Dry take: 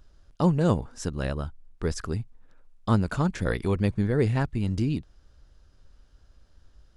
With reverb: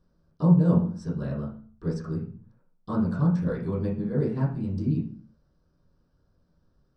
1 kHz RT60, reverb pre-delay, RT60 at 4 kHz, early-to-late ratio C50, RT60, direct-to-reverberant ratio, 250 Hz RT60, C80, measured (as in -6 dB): 0.45 s, 3 ms, 0.40 s, 7.0 dB, 0.45 s, -11.0 dB, 0.70 s, 11.5 dB